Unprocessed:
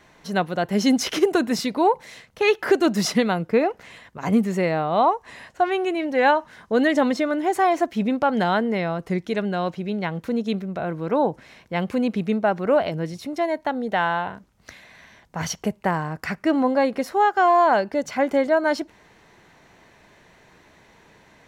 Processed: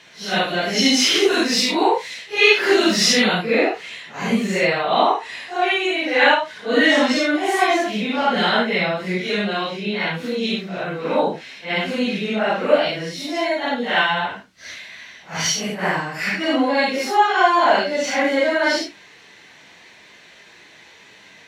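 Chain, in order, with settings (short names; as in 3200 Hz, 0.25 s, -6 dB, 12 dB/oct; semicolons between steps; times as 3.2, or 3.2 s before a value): phase scrambler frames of 0.2 s; weighting filter D; gain +2 dB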